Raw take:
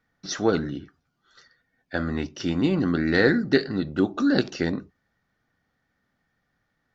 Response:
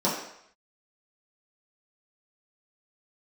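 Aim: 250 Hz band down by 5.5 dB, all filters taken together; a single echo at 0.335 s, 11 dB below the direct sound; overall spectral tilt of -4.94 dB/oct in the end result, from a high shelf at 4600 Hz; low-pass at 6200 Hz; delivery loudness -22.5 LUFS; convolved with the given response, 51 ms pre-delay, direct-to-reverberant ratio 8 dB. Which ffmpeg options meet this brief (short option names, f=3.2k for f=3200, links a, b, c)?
-filter_complex "[0:a]lowpass=6.2k,equalizer=f=250:t=o:g=-7,highshelf=f=4.6k:g=-4.5,aecho=1:1:335:0.282,asplit=2[a][b];[1:a]atrim=start_sample=2205,adelay=51[c];[b][c]afir=irnorm=-1:irlink=0,volume=-21dB[d];[a][d]amix=inputs=2:normalize=0,volume=4dB"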